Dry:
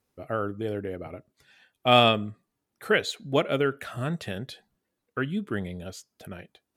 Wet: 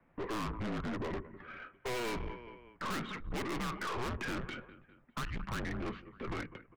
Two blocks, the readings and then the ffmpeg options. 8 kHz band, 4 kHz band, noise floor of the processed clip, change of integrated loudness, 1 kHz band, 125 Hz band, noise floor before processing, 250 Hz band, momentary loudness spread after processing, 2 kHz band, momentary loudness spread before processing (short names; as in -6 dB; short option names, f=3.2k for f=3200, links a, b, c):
-4.5 dB, -16.0 dB, -67 dBFS, -13.0 dB, -11.5 dB, -9.0 dB, -82 dBFS, -8.5 dB, 10 LU, -9.5 dB, 23 LU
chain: -filter_complex "[0:a]highpass=f=260:t=q:w=0.5412,highpass=f=260:t=q:w=1.307,lowpass=f=2.5k:t=q:w=0.5176,lowpass=f=2.5k:t=q:w=0.7071,lowpass=f=2.5k:t=q:w=1.932,afreqshift=-240,acrossover=split=320|1300[a][b][c];[a]acompressor=threshold=-39dB:ratio=4[d];[b]acompressor=threshold=-37dB:ratio=4[e];[c]acompressor=threshold=-39dB:ratio=4[f];[d][e][f]amix=inputs=3:normalize=0,asplit=2[g][h];[h]aecho=0:1:202|404|606:0.0631|0.0303|0.0145[i];[g][i]amix=inputs=2:normalize=0,aeval=exprs='(tanh(282*val(0)+0.35)-tanh(0.35))/282':c=same,volume=13.5dB"